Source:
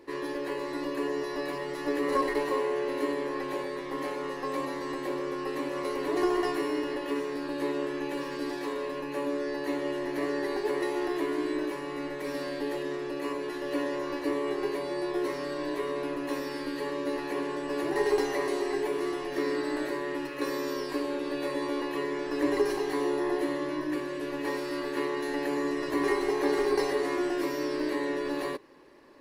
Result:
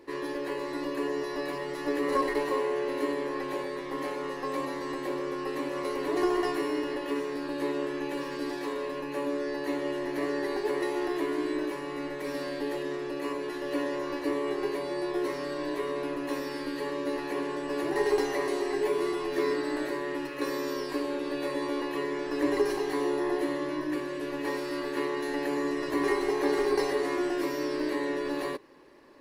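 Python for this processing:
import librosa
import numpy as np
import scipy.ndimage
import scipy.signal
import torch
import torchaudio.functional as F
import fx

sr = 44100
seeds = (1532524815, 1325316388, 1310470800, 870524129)

y = fx.doubler(x, sr, ms=12.0, db=-4.0, at=(18.8, 19.54))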